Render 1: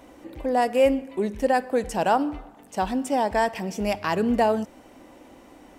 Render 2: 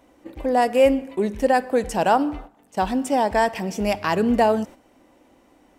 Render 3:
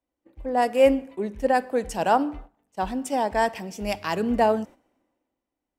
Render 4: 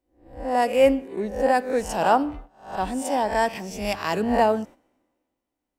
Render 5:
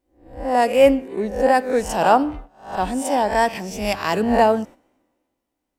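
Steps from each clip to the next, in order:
gate -40 dBFS, range -10 dB; gain +3 dB
three-band expander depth 70%; gain -4 dB
spectral swells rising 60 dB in 0.45 s
vibrato 2.7 Hz 29 cents; gain +4 dB

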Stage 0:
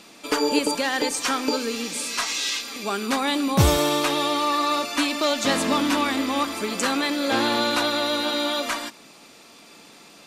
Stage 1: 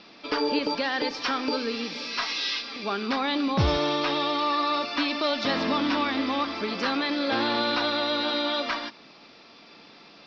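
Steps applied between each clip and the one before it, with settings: Chebyshev low-pass 5400 Hz, order 6; in parallel at +2.5 dB: limiter -16.5 dBFS, peak gain reduction 10 dB; on the sum: gain -8.5 dB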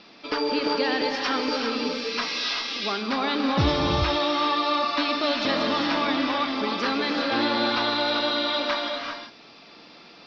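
non-linear reverb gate 0.42 s rising, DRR 2 dB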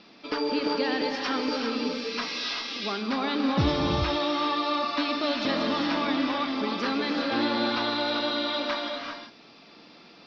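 bell 220 Hz +4 dB 1.7 oct; gain -4 dB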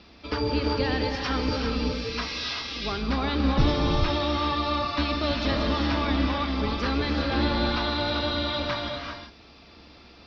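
octaver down 2 oct, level +2 dB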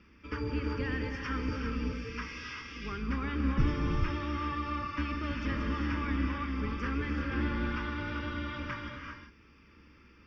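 fixed phaser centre 1700 Hz, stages 4; gain -5 dB

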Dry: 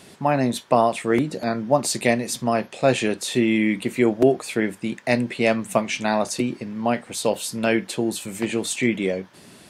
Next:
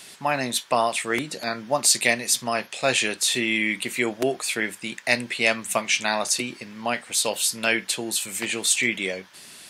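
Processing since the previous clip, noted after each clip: tilt shelf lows -9 dB; gain -1.5 dB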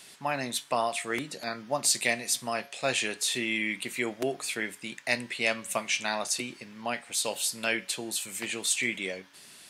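resonator 140 Hz, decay 0.63 s, harmonics all, mix 40%; gain -2.5 dB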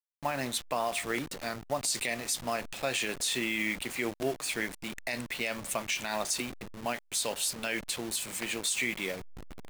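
level-crossing sampler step -36.5 dBFS; limiter -20 dBFS, peak gain reduction 10.5 dB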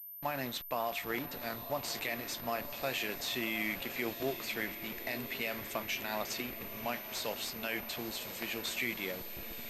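diffused feedback echo 1.009 s, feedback 62%, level -11 dB; pulse-width modulation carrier 13000 Hz; gain -4 dB

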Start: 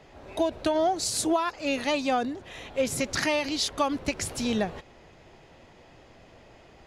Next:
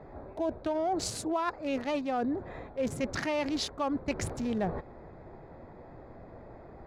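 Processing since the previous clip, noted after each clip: Wiener smoothing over 15 samples; high shelf 2900 Hz -9.5 dB; reverse; compressor 6:1, threshold -34 dBFS, peak gain reduction 13 dB; reverse; gain +5.5 dB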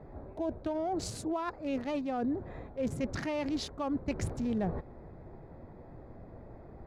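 low shelf 370 Hz +8.5 dB; gain -6 dB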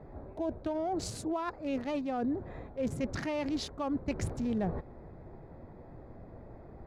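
nothing audible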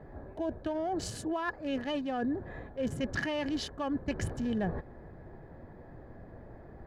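small resonant body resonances 1700/3000 Hz, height 15 dB, ringing for 35 ms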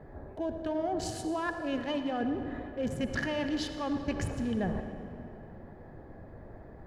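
reverb RT60 2.9 s, pre-delay 55 ms, DRR 7 dB

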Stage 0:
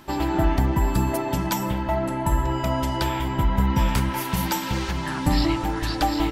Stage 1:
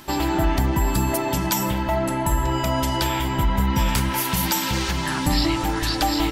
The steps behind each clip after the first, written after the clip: high shelf 2700 Hz +8 dB; in parallel at +2.5 dB: limiter -16.5 dBFS, peak gain reduction 9 dB; on the sum: gain -5 dB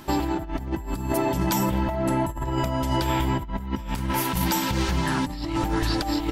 tilt shelf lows +3.5 dB, about 1200 Hz; negative-ratio compressor -21 dBFS, ratio -0.5; gain -3.5 dB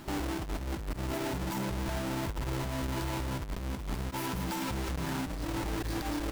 half-waves squared off; limiter -21.5 dBFS, peak gain reduction 30.5 dB; gain -8.5 dB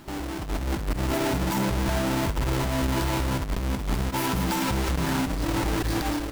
AGC gain up to 8.5 dB; flutter echo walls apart 11.2 m, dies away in 0.26 s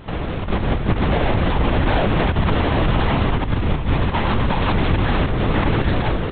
LPC vocoder at 8 kHz whisper; gain +8 dB

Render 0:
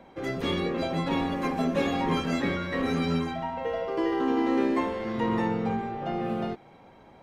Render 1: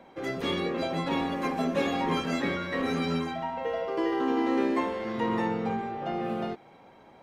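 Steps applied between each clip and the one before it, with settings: low shelf 130 Hz -9.5 dB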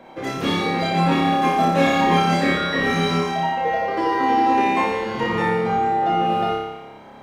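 flutter echo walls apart 5 m, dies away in 1 s; gain +6 dB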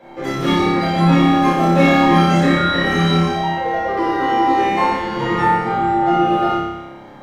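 shoebox room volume 220 m³, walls furnished, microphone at 4.1 m; gain -4.5 dB

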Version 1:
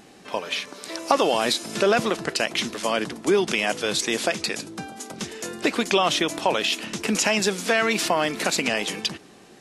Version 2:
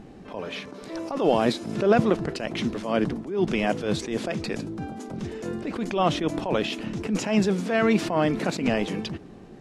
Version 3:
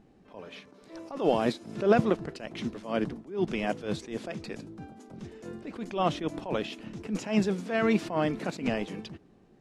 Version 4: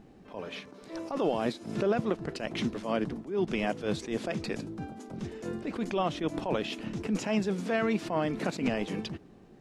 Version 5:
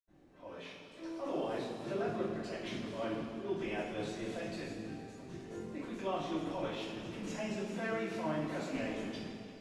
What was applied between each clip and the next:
tilt -4 dB/oct; attack slew limiter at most 100 dB/s; gain -1.5 dB
upward expander 1.5:1, over -40 dBFS; gain -2 dB
compressor 4:1, threshold -31 dBFS, peak gain reduction 12.5 dB; gain +5 dB
reverb RT60 2.8 s, pre-delay 76 ms; gain -6.5 dB

